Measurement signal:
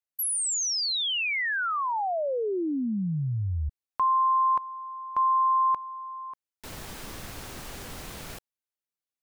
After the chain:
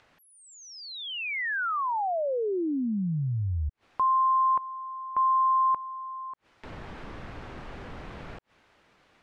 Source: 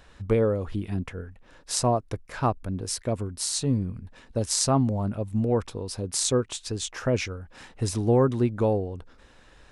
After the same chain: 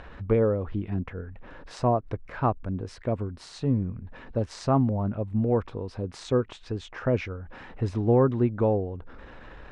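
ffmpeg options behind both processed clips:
-af "acompressor=mode=upward:threshold=-35dB:ratio=4:attack=1.1:release=79:knee=2.83:detection=peak,lowpass=2.1k"

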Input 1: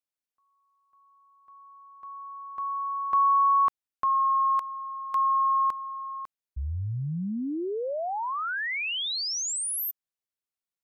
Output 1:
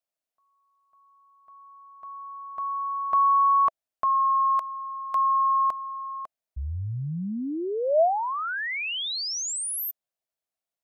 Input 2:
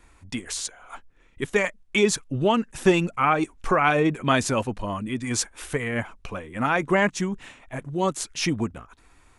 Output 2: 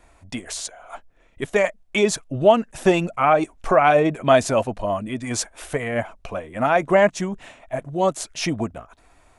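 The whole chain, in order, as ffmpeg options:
-af "equalizer=f=650:w=3:g=13"

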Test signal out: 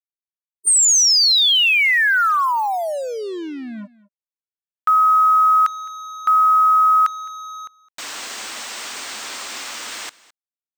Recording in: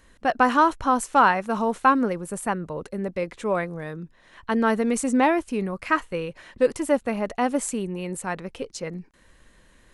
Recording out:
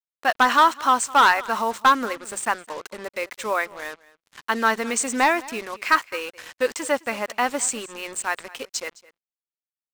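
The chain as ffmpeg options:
-filter_complex "[0:a]afftfilt=real='re*between(b*sr/4096,200,8900)':imag='im*between(b*sr/4096,200,8900)':win_size=4096:overlap=0.75,acrossover=split=1400[a][b];[a]crystalizer=i=10:c=0[c];[c][b]amix=inputs=2:normalize=0,tiltshelf=f=970:g=-9,acrusher=bits=5:mix=0:aa=0.5,volume=9.5dB,asoftclip=hard,volume=-9.5dB,asplit=2[d][e];[e]aecho=0:1:212:0.0891[f];[d][f]amix=inputs=2:normalize=0"

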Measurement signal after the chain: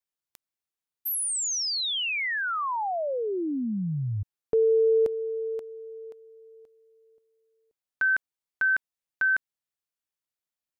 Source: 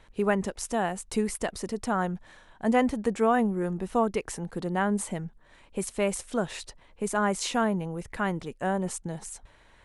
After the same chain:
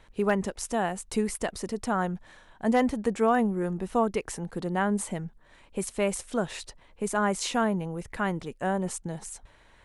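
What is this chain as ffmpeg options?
-af "volume=13dB,asoftclip=hard,volume=-13dB"

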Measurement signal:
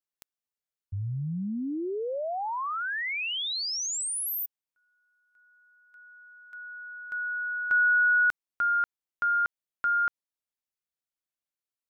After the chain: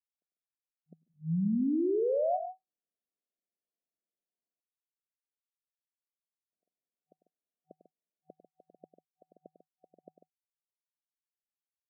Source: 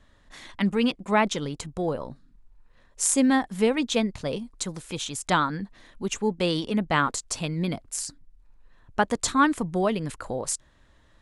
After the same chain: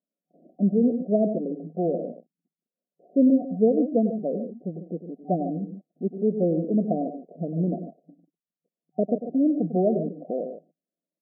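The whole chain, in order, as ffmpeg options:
-af "aecho=1:1:99.13|145.8:0.282|0.282,agate=range=-29dB:threshold=-47dB:ratio=16:release=59:detection=peak,afftfilt=real='re*between(b*sr/4096,160,750)':imag='im*between(b*sr/4096,160,750)':win_size=4096:overlap=0.75,volume=2.5dB"

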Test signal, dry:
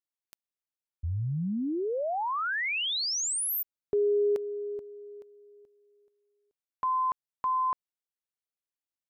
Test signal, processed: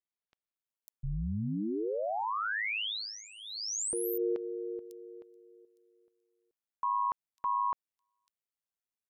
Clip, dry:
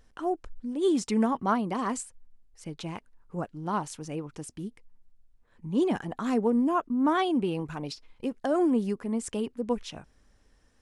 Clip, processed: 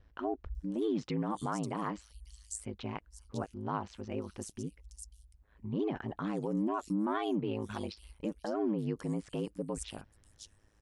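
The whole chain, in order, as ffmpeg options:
-filter_complex "[0:a]acrossover=split=4500[a][b];[b]adelay=550[c];[a][c]amix=inputs=2:normalize=0,alimiter=limit=-24dB:level=0:latency=1:release=91,aeval=exprs='val(0)*sin(2*PI*53*n/s)':c=same"

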